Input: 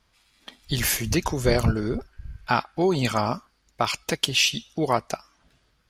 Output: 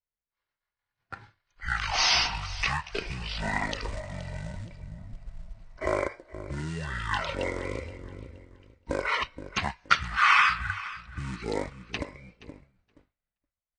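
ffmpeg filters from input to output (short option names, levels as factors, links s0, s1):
-filter_complex "[0:a]highpass=f=63:p=1,aecho=1:1:202|404|606:0.133|0.044|0.0145,asplit=2[s0][s1];[s1]acrusher=bits=5:mode=log:mix=0:aa=0.000001,volume=0.708[s2];[s0][s2]amix=inputs=2:normalize=0,firequalizer=gain_entry='entry(140,0);entry(650,-8);entry(3800,-4)':delay=0.05:min_phase=1,asetrate=18846,aresample=44100,agate=range=0.0224:threshold=0.00501:ratio=3:detection=peak,acrossover=split=470|6000[s3][s4][s5];[s3]acompressor=threshold=0.0178:ratio=6[s6];[s6][s4][s5]amix=inputs=3:normalize=0"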